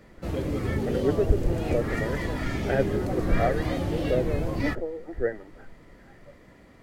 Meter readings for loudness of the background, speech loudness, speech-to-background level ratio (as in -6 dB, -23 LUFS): -29.5 LUFS, -30.5 LUFS, -1.0 dB